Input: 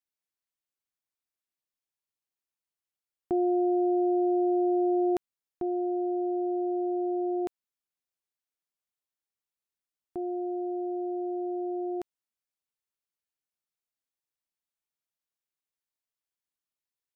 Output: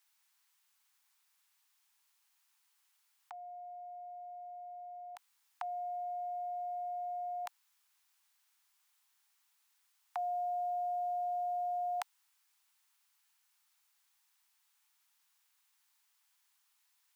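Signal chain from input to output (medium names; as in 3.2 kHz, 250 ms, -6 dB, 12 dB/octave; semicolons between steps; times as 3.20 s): steep high-pass 790 Hz 72 dB/octave; compressor with a negative ratio -52 dBFS, ratio -0.5; trim +13.5 dB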